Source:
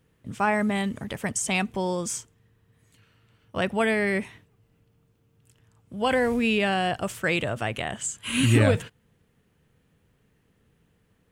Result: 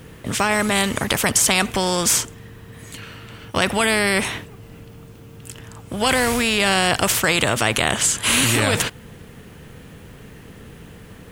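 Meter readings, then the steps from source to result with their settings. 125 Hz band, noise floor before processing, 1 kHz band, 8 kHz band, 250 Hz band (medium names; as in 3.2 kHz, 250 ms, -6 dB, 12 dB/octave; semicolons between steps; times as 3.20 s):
+1.0 dB, -67 dBFS, +6.5 dB, +14.0 dB, +2.5 dB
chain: loudness maximiser +17 dB; spectrum-flattening compressor 2:1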